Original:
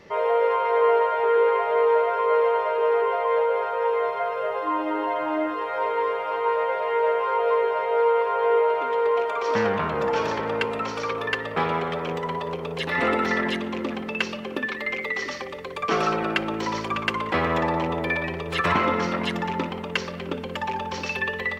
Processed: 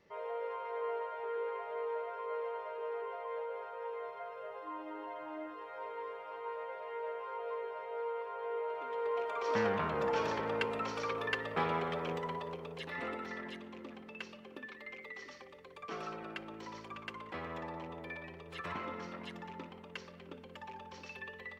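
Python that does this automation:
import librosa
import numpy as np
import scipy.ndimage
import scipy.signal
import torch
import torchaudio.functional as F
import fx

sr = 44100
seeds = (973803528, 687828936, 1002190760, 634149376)

y = fx.gain(x, sr, db=fx.line((8.53, -18.5), (9.58, -9.0), (12.12, -9.0), (13.26, -19.5)))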